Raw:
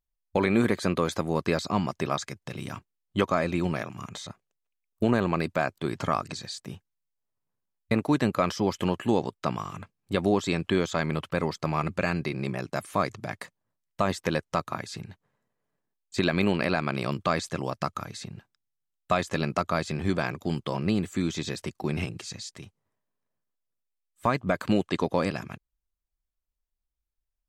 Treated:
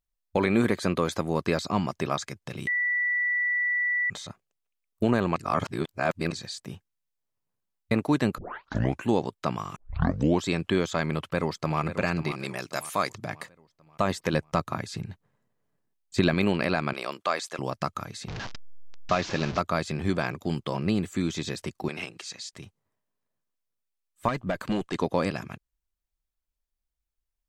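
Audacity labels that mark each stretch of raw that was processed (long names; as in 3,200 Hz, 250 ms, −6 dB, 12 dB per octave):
2.670000	4.100000	beep over 1,960 Hz −23 dBFS
5.360000	6.310000	reverse
8.380000	8.380000	tape start 0.69 s
9.760000	9.760000	tape start 0.67 s
11.160000	11.810000	delay throw 540 ms, feedback 45%, level −10.5 dB
12.310000	13.150000	spectral tilt +2.5 dB per octave
14.330000	16.340000	low-shelf EQ 260 Hz +6.5 dB
16.930000	17.590000	high-pass filter 470 Hz
18.280000	19.590000	linear delta modulator 32 kbit/s, step −29 dBFS
21.880000	22.530000	meter weighting curve A
24.280000	24.950000	tube saturation drive 20 dB, bias 0.3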